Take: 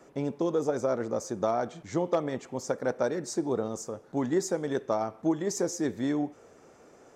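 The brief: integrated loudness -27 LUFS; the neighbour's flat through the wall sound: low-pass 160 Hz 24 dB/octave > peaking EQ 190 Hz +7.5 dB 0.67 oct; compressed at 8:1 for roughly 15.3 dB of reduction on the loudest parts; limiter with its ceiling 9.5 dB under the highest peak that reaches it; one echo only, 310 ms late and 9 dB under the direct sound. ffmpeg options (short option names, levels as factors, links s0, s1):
-af "acompressor=threshold=0.0112:ratio=8,alimiter=level_in=3.76:limit=0.0631:level=0:latency=1,volume=0.266,lowpass=f=160:w=0.5412,lowpass=f=160:w=1.3066,equalizer=f=190:t=o:w=0.67:g=7.5,aecho=1:1:310:0.355,volume=26.6"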